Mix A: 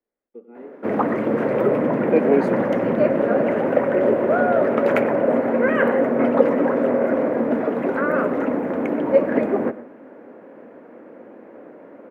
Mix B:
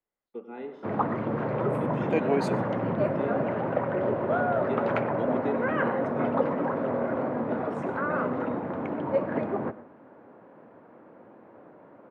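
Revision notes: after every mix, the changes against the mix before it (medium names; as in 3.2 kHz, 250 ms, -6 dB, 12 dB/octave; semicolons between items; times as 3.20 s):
first voice +10.5 dB; background: add tape spacing loss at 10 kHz 37 dB; master: add graphic EQ 125/250/500/1000/2000/4000/8000 Hz +5/-9/-8/+3/-5/+8/+8 dB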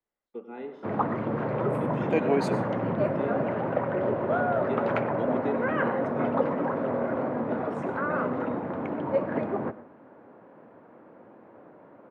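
second voice: send +9.0 dB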